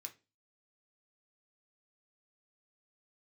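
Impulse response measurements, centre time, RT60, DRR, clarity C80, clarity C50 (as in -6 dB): 8 ms, 0.30 s, 3.5 dB, 24.0 dB, 16.5 dB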